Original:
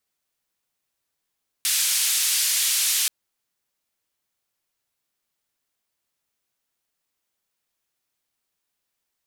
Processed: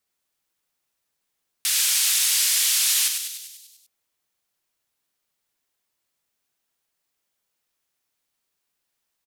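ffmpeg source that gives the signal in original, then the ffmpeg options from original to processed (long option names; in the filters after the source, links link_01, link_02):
-f lavfi -i "anoisesrc=color=white:duration=1.43:sample_rate=44100:seed=1,highpass=frequency=2700,lowpass=frequency=12000,volume=-13.3dB"
-filter_complex "[0:a]asplit=9[link_01][link_02][link_03][link_04][link_05][link_06][link_07][link_08][link_09];[link_02]adelay=98,afreqshift=140,volume=-6dB[link_10];[link_03]adelay=196,afreqshift=280,volume=-10.3dB[link_11];[link_04]adelay=294,afreqshift=420,volume=-14.6dB[link_12];[link_05]adelay=392,afreqshift=560,volume=-18.9dB[link_13];[link_06]adelay=490,afreqshift=700,volume=-23.2dB[link_14];[link_07]adelay=588,afreqshift=840,volume=-27.5dB[link_15];[link_08]adelay=686,afreqshift=980,volume=-31.8dB[link_16];[link_09]adelay=784,afreqshift=1120,volume=-36.1dB[link_17];[link_01][link_10][link_11][link_12][link_13][link_14][link_15][link_16][link_17]amix=inputs=9:normalize=0"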